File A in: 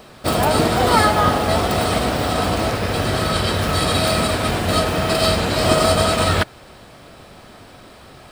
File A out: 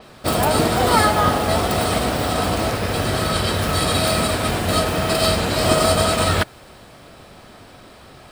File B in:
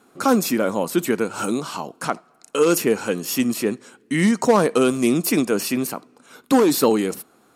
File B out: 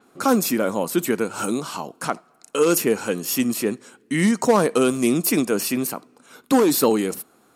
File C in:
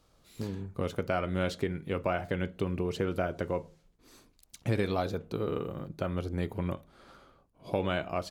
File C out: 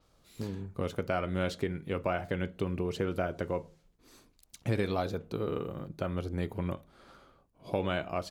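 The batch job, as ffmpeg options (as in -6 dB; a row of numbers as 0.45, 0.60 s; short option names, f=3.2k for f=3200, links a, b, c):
-af "adynamicequalizer=threshold=0.0112:dfrequency=7300:dqfactor=0.7:tfrequency=7300:tqfactor=0.7:attack=5:release=100:ratio=0.375:range=2:mode=boostabove:tftype=highshelf,volume=-1dB"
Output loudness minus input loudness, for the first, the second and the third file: -1.0, -0.5, -1.0 LU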